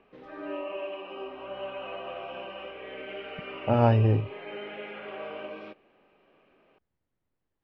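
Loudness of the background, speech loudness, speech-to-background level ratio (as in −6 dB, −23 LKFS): −39.0 LKFS, −24.0 LKFS, 15.0 dB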